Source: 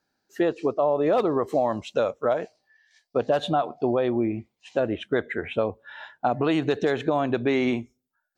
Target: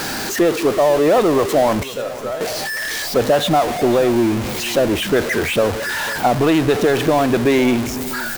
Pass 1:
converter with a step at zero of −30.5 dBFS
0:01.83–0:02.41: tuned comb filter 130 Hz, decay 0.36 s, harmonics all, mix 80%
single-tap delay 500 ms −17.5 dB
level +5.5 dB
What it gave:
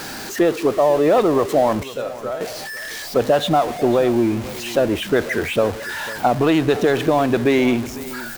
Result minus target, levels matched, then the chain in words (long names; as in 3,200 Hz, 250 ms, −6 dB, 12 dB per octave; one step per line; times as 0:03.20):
converter with a step at zero: distortion −6 dB
converter with a step at zero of −23.5 dBFS
0:01.83–0:02.41: tuned comb filter 130 Hz, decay 0.36 s, harmonics all, mix 80%
single-tap delay 500 ms −17.5 dB
level +5.5 dB